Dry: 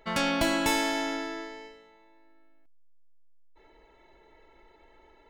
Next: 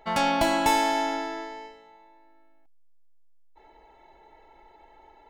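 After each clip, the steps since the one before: bell 800 Hz +13.5 dB 0.39 oct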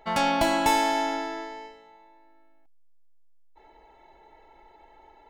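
nothing audible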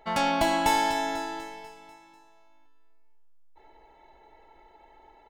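feedback echo 0.246 s, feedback 54%, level -12 dB; gain -1.5 dB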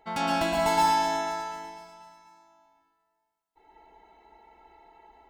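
notch comb 580 Hz; plate-style reverb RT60 0.66 s, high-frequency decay 0.75×, pre-delay 0.105 s, DRR -2 dB; gain -3.5 dB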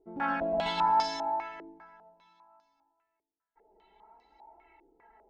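flange 0.65 Hz, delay 2.8 ms, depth 2.5 ms, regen +37%; stepped low-pass 5 Hz 380–5000 Hz; gain -4 dB

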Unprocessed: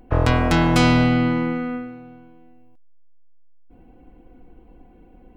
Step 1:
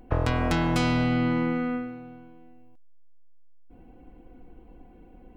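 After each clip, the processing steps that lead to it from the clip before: compressor 5:1, threshold -19 dBFS, peak gain reduction 7.5 dB; gain -1.5 dB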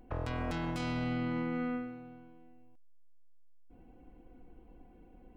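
limiter -20 dBFS, peak gain reduction 10 dB; gain -6.5 dB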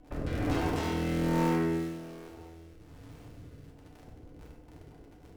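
cycle switcher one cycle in 3, inverted; rotary speaker horn 1.2 Hz, later 6 Hz, at 4.06; FDN reverb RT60 0.96 s, low-frequency decay 0.85×, high-frequency decay 0.75×, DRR -2 dB; gain +1.5 dB

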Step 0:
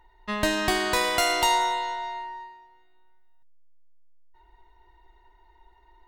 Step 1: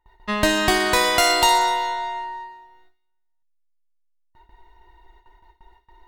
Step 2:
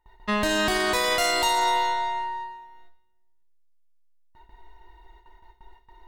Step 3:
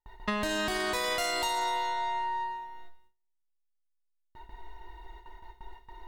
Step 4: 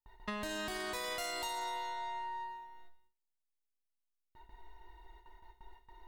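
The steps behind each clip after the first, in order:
gate with hold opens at -48 dBFS; thin delay 61 ms, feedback 59%, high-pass 2700 Hz, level -10 dB; gain +5.5 dB
limiter -14.5 dBFS, peak gain reduction 9 dB; on a send at -14 dB: reverb RT60 1.2 s, pre-delay 5 ms
gate with hold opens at -53 dBFS; compressor 5:1, threshold -33 dBFS, peak gain reduction 12.5 dB; gain +4 dB
high shelf 9300 Hz +5 dB; gain -9 dB

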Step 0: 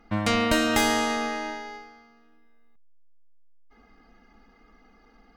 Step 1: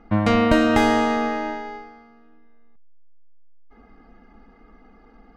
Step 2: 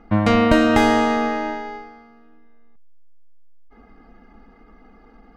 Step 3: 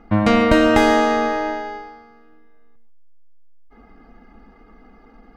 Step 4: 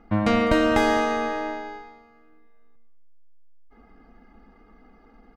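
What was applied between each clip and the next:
LPF 1100 Hz 6 dB/oct; gain +7.5 dB
ending taper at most 170 dB/s; gain +2 dB
non-linear reverb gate 0.16 s rising, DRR 11 dB; gain +1 dB
feedback echo 0.203 s, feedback 27%, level -15.5 dB; gain -5.5 dB

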